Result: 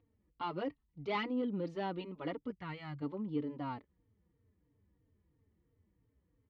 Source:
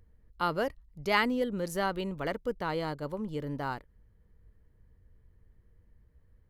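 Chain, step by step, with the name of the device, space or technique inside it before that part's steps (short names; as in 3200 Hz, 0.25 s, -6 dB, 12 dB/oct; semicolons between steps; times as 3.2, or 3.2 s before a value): 2.5–3.02 graphic EQ 125/250/500/1000/2000/4000/8000 Hz +10/-12/-11/-4/+6/-8/+11 dB; barber-pole flanger into a guitar amplifier (endless flanger 3.8 ms -3 Hz; soft clip -25.5 dBFS, distortion -13 dB; speaker cabinet 100–3700 Hz, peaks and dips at 290 Hz +9 dB, 590 Hz -4 dB, 1600 Hz -9 dB); gain -2.5 dB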